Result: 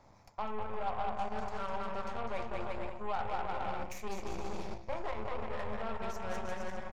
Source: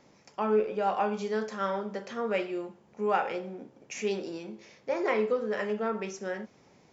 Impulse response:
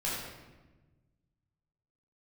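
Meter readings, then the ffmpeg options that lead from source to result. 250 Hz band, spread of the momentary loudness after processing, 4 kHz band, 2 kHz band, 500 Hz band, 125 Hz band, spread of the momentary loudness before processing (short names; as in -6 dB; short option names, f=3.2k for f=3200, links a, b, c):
-10.0 dB, 5 LU, -5.5 dB, -7.0 dB, -10.5 dB, -1.0 dB, 15 LU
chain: -filter_complex "[0:a]equalizer=f=2.9k:t=o:w=0.38:g=-14,acontrast=50,bandreject=f=60:t=h:w=6,bandreject=f=120:t=h:w=6,bandreject=f=180:t=h:w=6,bandreject=f=240:t=h:w=6,bandreject=f=300:t=h:w=6,bandreject=f=360:t=h:w=6,asplit=2[a][b];[b]aecho=0:1:200|350|462.5|546.9|610.2:0.631|0.398|0.251|0.158|0.1[c];[a][c]amix=inputs=2:normalize=0,alimiter=limit=-17.5dB:level=0:latency=1:release=291,areverse,acompressor=threshold=-33dB:ratio=6,areverse,aeval=exprs='0.0668*(cos(1*acos(clip(val(0)/0.0668,-1,1)))-cos(1*PI/2))+0.00422*(cos(7*acos(clip(val(0)/0.0668,-1,1)))-cos(7*PI/2))+0.00596*(cos(8*acos(clip(val(0)/0.0668,-1,1)))-cos(8*PI/2))':c=same,firequalizer=gain_entry='entry(100,0);entry(150,-13);entry(430,-18);entry(690,-7);entry(980,-7);entry(1700,-14);entry(2600,-10);entry(5800,-17);entry(10000,-11)':delay=0.05:min_phase=1,volume=9dB"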